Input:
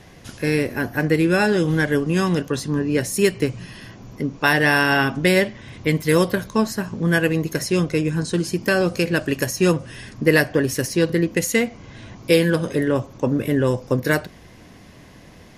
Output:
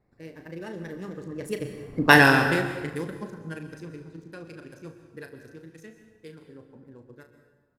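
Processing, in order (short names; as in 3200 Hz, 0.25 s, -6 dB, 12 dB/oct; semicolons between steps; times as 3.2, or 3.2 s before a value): Wiener smoothing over 15 samples; Doppler pass-by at 4.26, 20 m/s, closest 3.7 m; tempo 2×; on a send: flutter echo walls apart 6.3 m, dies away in 0.25 s; on the sum: plate-style reverb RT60 1.3 s, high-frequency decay 0.75×, pre-delay 0.11 s, DRR 8.5 dB; gain +4.5 dB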